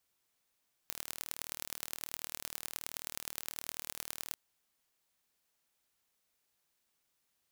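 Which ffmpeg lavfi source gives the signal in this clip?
-f lavfi -i "aevalsrc='0.335*eq(mod(n,1140),0)*(0.5+0.5*eq(mod(n,4560),0))':d=3.44:s=44100"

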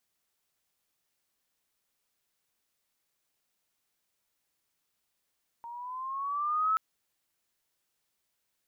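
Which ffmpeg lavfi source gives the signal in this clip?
-f lavfi -i "aevalsrc='pow(10,(-23+17*(t/1.13-1))/20)*sin(2*PI*928*1.13/(6*log(2)/12)*(exp(6*log(2)/12*t/1.13)-1))':d=1.13:s=44100"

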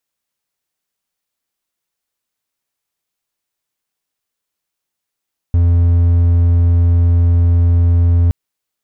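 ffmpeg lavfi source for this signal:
-f lavfi -i "aevalsrc='0.501*(1-4*abs(mod(85.9*t+0.25,1)-0.5))':d=2.77:s=44100"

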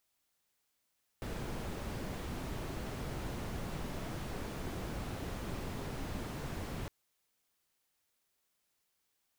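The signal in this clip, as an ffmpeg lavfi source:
-f lavfi -i "anoisesrc=c=brown:a=0.0495:d=5.66:r=44100:seed=1"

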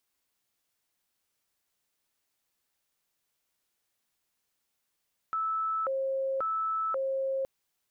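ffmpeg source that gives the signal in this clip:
-f lavfi -i "aevalsrc='0.0422*sin(2*PI*(923*t+387/0.93*(0.5-abs(mod(0.93*t,1)-0.5))))':d=2.12:s=44100"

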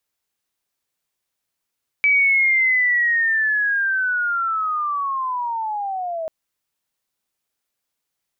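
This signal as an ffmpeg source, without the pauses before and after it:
-f lavfi -i "aevalsrc='pow(10,(-12.5-11*t/4.24)/20)*sin(2*PI*(2300*t-1670*t*t/(2*4.24)))':d=4.24:s=44100"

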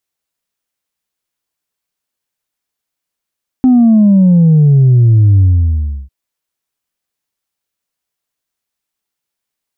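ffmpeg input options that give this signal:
-f lavfi -i "aevalsrc='0.596*clip((2.45-t)/0.69,0,1)*tanh(1.12*sin(2*PI*260*2.45/log(65/260)*(exp(log(65/260)*t/2.45)-1)))/tanh(1.12)':d=2.45:s=44100"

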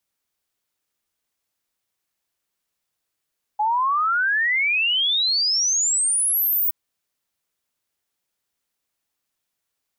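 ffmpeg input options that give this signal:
-f lavfi -i "aevalsrc='0.133*clip(min(t,3.12-t)/0.01,0,1)*sin(2*PI*830*3.12/log(16000/830)*(exp(log(16000/830)*t/3.12)-1))':d=3.12:s=44100"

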